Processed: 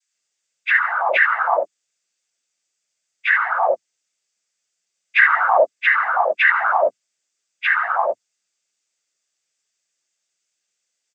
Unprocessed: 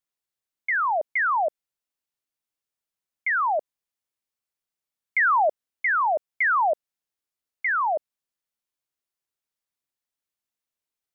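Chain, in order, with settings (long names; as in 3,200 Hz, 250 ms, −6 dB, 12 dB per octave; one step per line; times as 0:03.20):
every partial snapped to a pitch grid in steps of 6 semitones
multiband delay without the direct sound highs, lows 130 ms, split 1,200 Hz
cochlear-implant simulation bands 16
level +4.5 dB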